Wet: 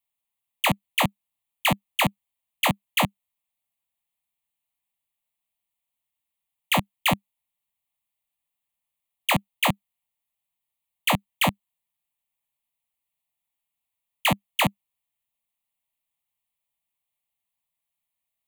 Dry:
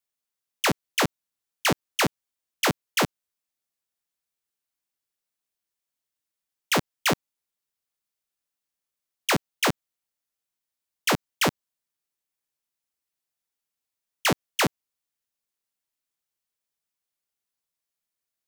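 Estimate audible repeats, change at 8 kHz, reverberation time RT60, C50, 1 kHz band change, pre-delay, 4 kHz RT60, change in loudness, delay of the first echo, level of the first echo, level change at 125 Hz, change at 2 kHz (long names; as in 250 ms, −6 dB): no echo audible, −3.0 dB, no reverb audible, no reverb audible, +2.5 dB, no reverb audible, no reverb audible, +1.0 dB, no echo audible, no echo audible, +3.0 dB, +1.0 dB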